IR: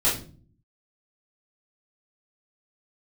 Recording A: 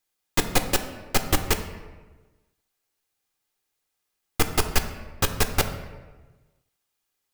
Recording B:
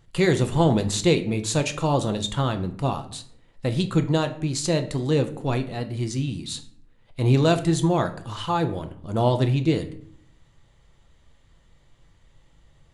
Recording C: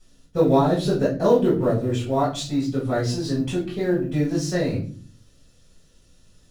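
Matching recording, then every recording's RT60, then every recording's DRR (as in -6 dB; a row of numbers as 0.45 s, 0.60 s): C; 1.3 s, 0.65 s, 0.40 s; 7.0 dB, 7.0 dB, -9.5 dB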